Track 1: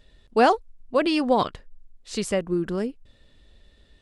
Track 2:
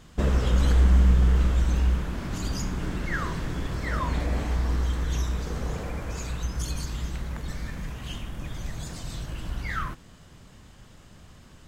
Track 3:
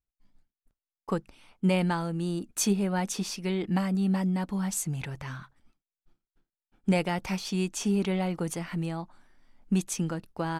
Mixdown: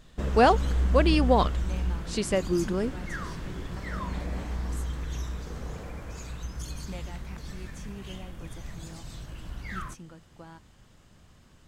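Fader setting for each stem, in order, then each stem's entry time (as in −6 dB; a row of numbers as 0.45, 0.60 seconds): −1.5, −6.5, −16.5 decibels; 0.00, 0.00, 0.00 seconds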